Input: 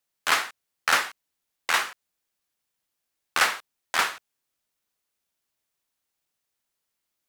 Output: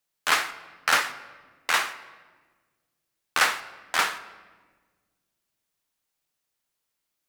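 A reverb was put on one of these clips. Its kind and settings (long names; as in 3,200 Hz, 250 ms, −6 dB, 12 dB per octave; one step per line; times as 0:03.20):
rectangular room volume 1,400 cubic metres, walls mixed, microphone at 0.47 metres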